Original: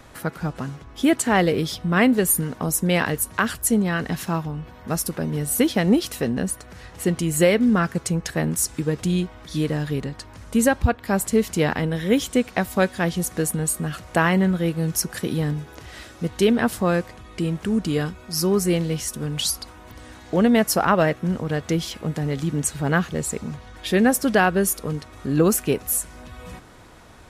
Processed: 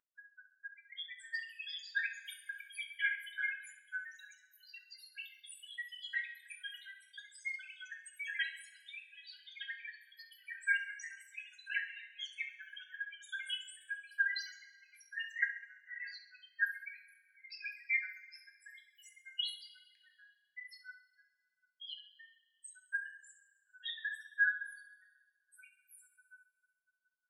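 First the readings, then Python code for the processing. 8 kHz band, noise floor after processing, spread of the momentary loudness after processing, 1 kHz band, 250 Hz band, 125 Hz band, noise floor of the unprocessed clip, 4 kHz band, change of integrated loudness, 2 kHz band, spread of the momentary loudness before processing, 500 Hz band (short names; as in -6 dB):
-31.0 dB, -81 dBFS, 21 LU, under -40 dB, under -40 dB, under -40 dB, -45 dBFS, -12.5 dB, -17.5 dB, -8.0 dB, 12 LU, under -40 dB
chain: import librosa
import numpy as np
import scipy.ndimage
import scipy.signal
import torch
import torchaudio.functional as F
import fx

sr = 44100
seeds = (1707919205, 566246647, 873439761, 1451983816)

p1 = fx.recorder_agc(x, sr, target_db=-10.5, rise_db_per_s=7.3, max_gain_db=30)
p2 = fx.peak_eq(p1, sr, hz=5400.0, db=-8.5, octaves=0.59)
p3 = p2 + 0.43 * np.pad(p2, (int(6.1 * sr / 1000.0), 0))[:len(p2)]
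p4 = fx.rotary_switch(p3, sr, hz=1.0, then_hz=7.0, switch_at_s=4.28)
p5 = fx.spec_topn(p4, sr, count=8)
p6 = fx.echo_pitch(p5, sr, ms=650, semitones=6, count=2, db_per_echo=-3.0)
p7 = fx.brickwall_highpass(p6, sr, low_hz=1500.0)
p8 = fx.spacing_loss(p7, sr, db_at_10k=31)
p9 = p8 + fx.echo_feedback(p8, sr, ms=67, feedback_pct=49, wet_db=-13.0, dry=0)
p10 = fx.rev_double_slope(p9, sr, seeds[0], early_s=0.3, late_s=1.7, knee_db=-18, drr_db=1.0)
y = p10 * 10.0 ** (3.0 / 20.0)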